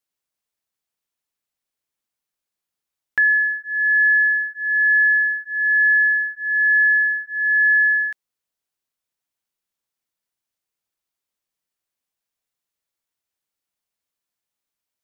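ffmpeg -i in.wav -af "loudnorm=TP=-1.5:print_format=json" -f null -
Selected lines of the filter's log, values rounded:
"input_i" : "-16.2",
"input_tp" : "-11.8",
"input_lra" : "6.4",
"input_thresh" : "-26.3",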